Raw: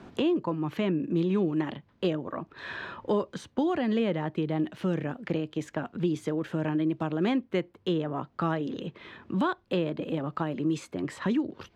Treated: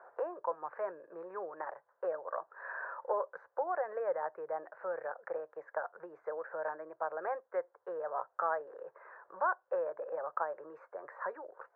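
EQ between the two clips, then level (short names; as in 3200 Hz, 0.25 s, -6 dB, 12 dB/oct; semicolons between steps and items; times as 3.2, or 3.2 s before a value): elliptic band-pass 510–1600 Hz, stop band 40 dB; air absorption 86 m; 0.0 dB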